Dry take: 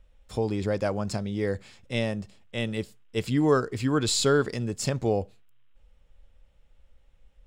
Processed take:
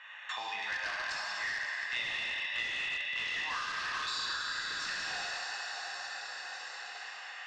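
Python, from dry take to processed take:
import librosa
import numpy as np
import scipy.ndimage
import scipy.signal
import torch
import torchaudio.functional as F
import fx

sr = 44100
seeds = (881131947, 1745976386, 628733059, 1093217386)

p1 = fx.wiener(x, sr, points=9)
p2 = scipy.signal.sosfilt(scipy.signal.cheby1(3, 1.0, 1400.0, 'highpass', fs=sr, output='sos'), p1)
p3 = fx.high_shelf(p2, sr, hz=2100.0, db=-3.5)
p4 = p3 + 0.68 * np.pad(p3, (int(1.1 * sr / 1000.0), 0))[:len(p3)]
p5 = p4 + fx.room_early_taps(p4, sr, ms=(24, 70), db=(-11.0, -11.5), dry=0)
p6 = fx.rev_plate(p5, sr, seeds[0], rt60_s=3.2, hf_ratio=0.9, predelay_ms=0, drr_db=-7.0)
p7 = (np.mod(10.0 ** (30.5 / 20.0) * p6 + 1.0, 2.0) - 1.0) / 10.0 ** (30.5 / 20.0)
p8 = p6 + (p7 * 10.0 ** (-4.0 / 20.0))
p9 = scipy.signal.sosfilt(scipy.signal.butter(4, 5400.0, 'lowpass', fs=sr, output='sos'), p8)
p10 = fx.band_squash(p9, sr, depth_pct=100)
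y = p10 * 10.0 ** (-4.0 / 20.0)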